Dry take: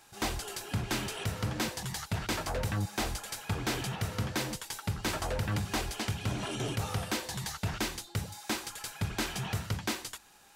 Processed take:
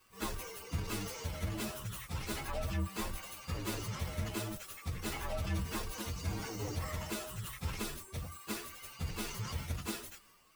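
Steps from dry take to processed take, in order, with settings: frequency axis rescaled in octaves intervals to 128%; transient shaper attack +1 dB, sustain +5 dB; trim -2 dB

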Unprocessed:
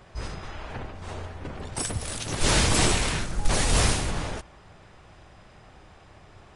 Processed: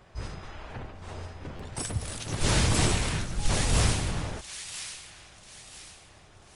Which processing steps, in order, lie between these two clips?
dynamic bell 110 Hz, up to +6 dB, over -38 dBFS, Q 0.72; on a send: feedback echo behind a high-pass 989 ms, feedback 36%, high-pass 2.2 kHz, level -7 dB; on the sum: buffer glitch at 1.56 s, samples 512, times 2; trim -4.5 dB

